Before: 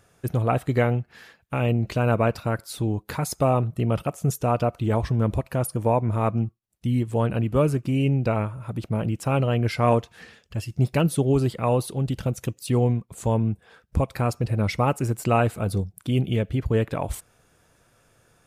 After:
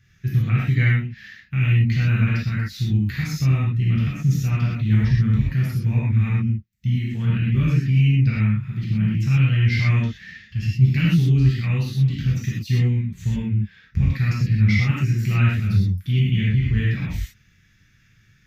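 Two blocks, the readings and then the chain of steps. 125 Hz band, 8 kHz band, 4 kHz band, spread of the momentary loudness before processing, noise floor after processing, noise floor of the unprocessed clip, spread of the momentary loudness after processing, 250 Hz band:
+7.0 dB, n/a, +4.0 dB, 7 LU, -58 dBFS, -63 dBFS, 8 LU, +2.0 dB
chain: EQ curve 130 Hz 0 dB, 190 Hz +2 dB, 570 Hz -29 dB, 1000 Hz -23 dB, 1900 Hz +4 dB, 2700 Hz -1 dB, 6200 Hz -4 dB, 9200 Hz -27 dB, 14000 Hz -7 dB; non-linear reverb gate 0.15 s flat, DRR -7 dB; gain -1.5 dB

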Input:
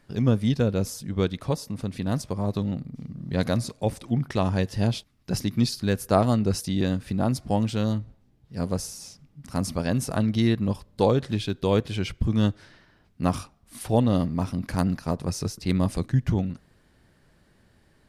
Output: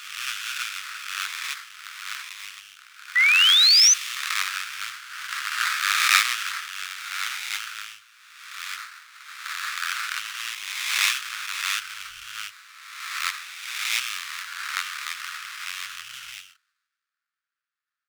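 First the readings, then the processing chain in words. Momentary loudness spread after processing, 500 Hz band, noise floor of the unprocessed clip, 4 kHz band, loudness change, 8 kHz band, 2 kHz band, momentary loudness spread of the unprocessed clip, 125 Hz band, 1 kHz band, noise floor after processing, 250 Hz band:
20 LU, under -40 dB, -62 dBFS, +16.0 dB, +3.5 dB, +12.5 dB, +16.0 dB, 10 LU, under -40 dB, +0.5 dB, under -85 dBFS, under -40 dB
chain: spectral swells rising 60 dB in 2.33 s; sample-rate reducer 3000 Hz, jitter 20%; elliptic high-pass 1300 Hz, stop band 50 dB; high shelf 11000 Hz -9 dB; painted sound rise, 3.15–3.94, 1900–6300 Hz -24 dBFS; three-band expander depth 70%; gain +3.5 dB

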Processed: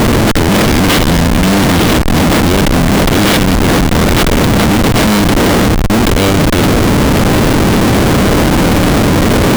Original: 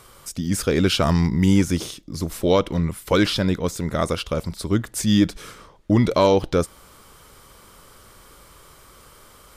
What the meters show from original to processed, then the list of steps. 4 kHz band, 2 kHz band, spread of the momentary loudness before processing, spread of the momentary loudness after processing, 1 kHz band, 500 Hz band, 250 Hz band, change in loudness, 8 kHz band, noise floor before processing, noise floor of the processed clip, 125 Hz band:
+14.0 dB, +18.5 dB, 11 LU, 1 LU, +15.5 dB, +10.5 dB, +13.0 dB, +11.5 dB, +15.0 dB, -50 dBFS, -10 dBFS, +13.5 dB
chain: per-bin compression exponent 0.2; ten-band EQ 250 Hz +6 dB, 1000 Hz -6 dB, 2000 Hz +12 dB, 4000 Hz +8 dB, 8000 Hz +6 dB; Schmitt trigger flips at -6.5 dBFS

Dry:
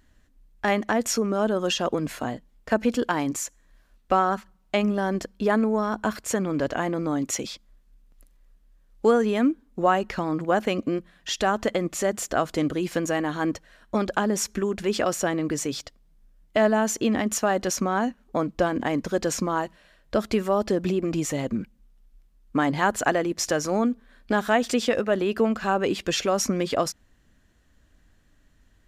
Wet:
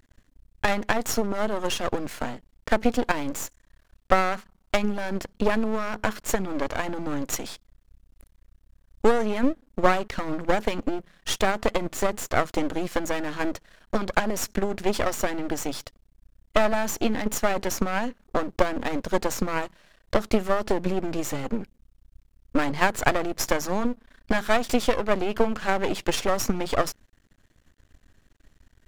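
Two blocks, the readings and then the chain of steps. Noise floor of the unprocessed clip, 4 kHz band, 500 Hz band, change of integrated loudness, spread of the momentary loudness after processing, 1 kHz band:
-61 dBFS, -1.0 dB, -1.5 dB, -1.5 dB, 8 LU, -1.0 dB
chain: half-wave rectifier; transient shaper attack +6 dB, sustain +2 dB; gain +1.5 dB

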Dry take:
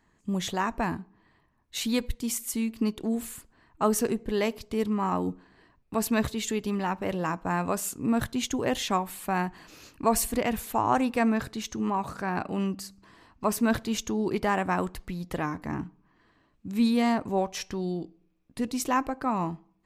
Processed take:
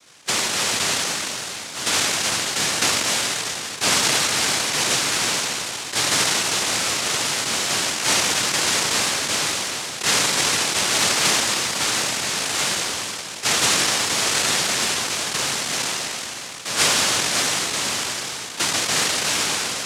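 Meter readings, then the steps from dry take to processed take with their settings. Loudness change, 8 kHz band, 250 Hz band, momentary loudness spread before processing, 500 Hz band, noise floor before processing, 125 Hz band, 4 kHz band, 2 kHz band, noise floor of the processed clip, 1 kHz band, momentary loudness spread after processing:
+9.5 dB, +18.0 dB, -6.5 dB, 10 LU, +0.5 dB, -68 dBFS, -0.5 dB, +20.5 dB, +14.0 dB, -33 dBFS, +3.5 dB, 7 LU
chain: spectral trails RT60 2.66 s; tilt shelf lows +4 dB; noise vocoder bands 1; three-band squash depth 40%

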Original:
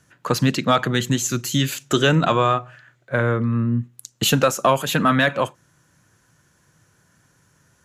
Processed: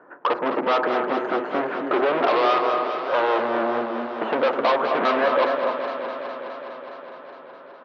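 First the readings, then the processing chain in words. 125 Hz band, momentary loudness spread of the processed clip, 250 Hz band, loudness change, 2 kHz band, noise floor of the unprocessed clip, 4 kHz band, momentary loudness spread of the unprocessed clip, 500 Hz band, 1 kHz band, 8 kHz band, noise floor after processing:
under -25 dB, 16 LU, -6.5 dB, -2.5 dB, -2.5 dB, -62 dBFS, -8.5 dB, 8 LU, +2.0 dB, +2.0 dB, under -30 dB, -43 dBFS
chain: on a send: echo 0.264 s -16.5 dB; on the sum: soft clip -22.5 dBFS, distortion -6 dB; LPF 1200 Hz 24 dB/oct; added harmonics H 5 -14 dB, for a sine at -20 dBFS; HPF 350 Hz 24 dB/oct; in parallel at +2.5 dB: compressor, threshold -37 dBFS, peak gain reduction 12.5 dB; on the sum: warbling echo 0.207 s, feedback 79%, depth 87 cents, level -9 dB; gain +5.5 dB

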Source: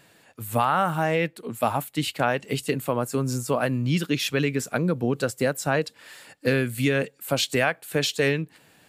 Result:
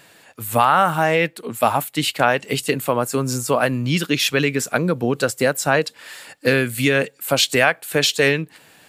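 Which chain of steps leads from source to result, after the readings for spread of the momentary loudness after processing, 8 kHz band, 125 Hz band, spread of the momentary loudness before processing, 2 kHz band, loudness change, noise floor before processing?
7 LU, +8.0 dB, +2.5 dB, 6 LU, +7.5 dB, +6.0 dB, -59 dBFS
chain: low shelf 390 Hz -6.5 dB; gain +8 dB

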